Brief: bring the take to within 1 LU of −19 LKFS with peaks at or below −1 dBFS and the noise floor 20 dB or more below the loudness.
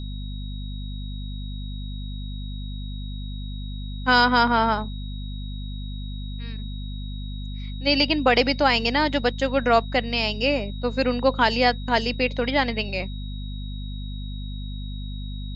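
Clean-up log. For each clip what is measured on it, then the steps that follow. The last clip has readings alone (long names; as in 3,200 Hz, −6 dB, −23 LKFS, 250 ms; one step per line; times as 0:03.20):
mains hum 50 Hz; hum harmonics up to 250 Hz; level of the hum −29 dBFS; interfering tone 3,800 Hz; level of the tone −43 dBFS; integrated loudness −25.0 LKFS; sample peak −4.5 dBFS; target loudness −19.0 LKFS
→ hum removal 50 Hz, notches 5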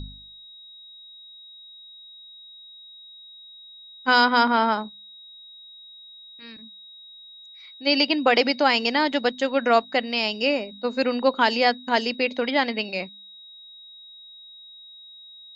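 mains hum none found; interfering tone 3,800 Hz; level of the tone −43 dBFS
→ notch filter 3,800 Hz, Q 30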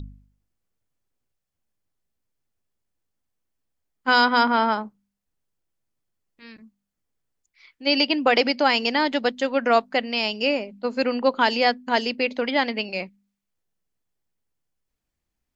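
interfering tone none found; integrated loudness −22.0 LKFS; sample peak −5.0 dBFS; target loudness −19.0 LKFS
→ level +3 dB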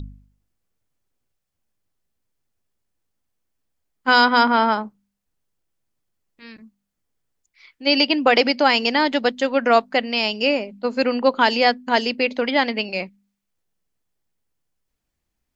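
integrated loudness −19.0 LKFS; sample peak −2.0 dBFS; background noise floor −79 dBFS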